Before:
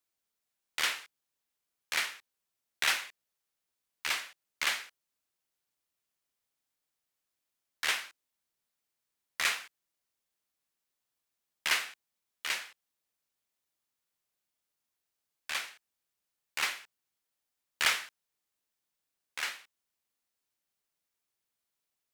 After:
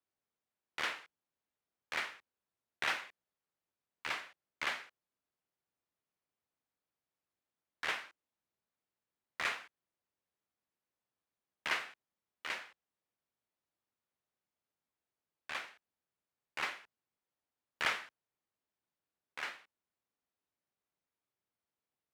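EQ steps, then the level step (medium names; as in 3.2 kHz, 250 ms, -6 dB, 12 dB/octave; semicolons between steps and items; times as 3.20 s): high-pass 52 Hz; low-pass 1.1 kHz 6 dB/octave; +1.0 dB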